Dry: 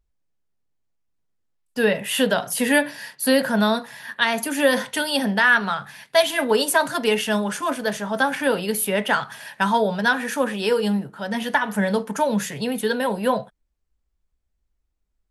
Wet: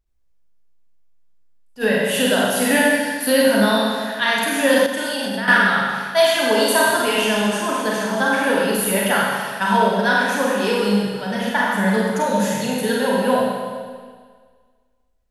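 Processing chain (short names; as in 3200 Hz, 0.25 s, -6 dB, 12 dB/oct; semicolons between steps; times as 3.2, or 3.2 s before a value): Schroeder reverb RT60 1.7 s, combs from 32 ms, DRR -4.5 dB; 4.86–5.48 level quantiser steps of 22 dB; attack slew limiter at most 370 dB/s; gain -2 dB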